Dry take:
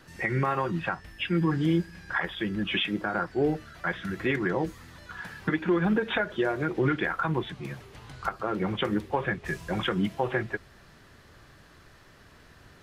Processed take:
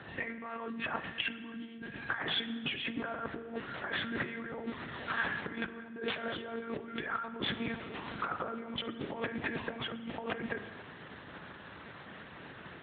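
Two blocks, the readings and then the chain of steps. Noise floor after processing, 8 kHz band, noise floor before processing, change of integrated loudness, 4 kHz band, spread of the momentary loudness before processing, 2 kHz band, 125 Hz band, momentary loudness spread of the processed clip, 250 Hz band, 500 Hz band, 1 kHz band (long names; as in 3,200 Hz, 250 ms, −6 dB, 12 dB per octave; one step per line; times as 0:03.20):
−50 dBFS, can't be measured, −55 dBFS, −9.0 dB, −2.5 dB, 10 LU, −5.5 dB, −16.5 dB, 14 LU, −11.5 dB, −11.0 dB, −8.0 dB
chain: one-pitch LPC vocoder at 8 kHz 230 Hz
compressor whose output falls as the input rises −37 dBFS, ratio −1
high-pass filter 150 Hz 12 dB per octave
spring reverb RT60 1.5 s, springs 38 ms, chirp 45 ms, DRR 11.5 dB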